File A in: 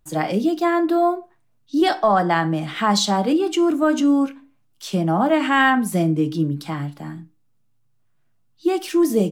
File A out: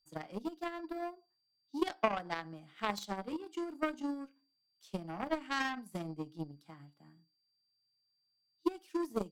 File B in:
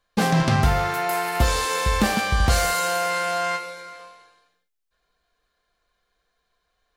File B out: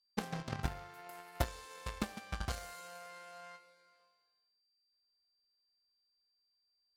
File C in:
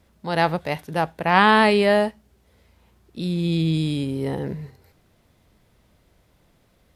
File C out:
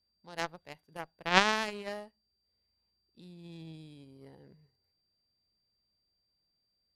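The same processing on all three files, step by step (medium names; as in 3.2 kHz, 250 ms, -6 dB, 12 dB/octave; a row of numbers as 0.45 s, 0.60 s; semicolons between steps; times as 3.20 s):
whistle 4.7 kHz -48 dBFS; transient shaper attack +4 dB, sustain -1 dB; Chebyshev shaper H 3 -10 dB, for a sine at 1 dBFS; trim -3.5 dB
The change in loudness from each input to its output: -19.0 LU, -21.5 LU, -10.0 LU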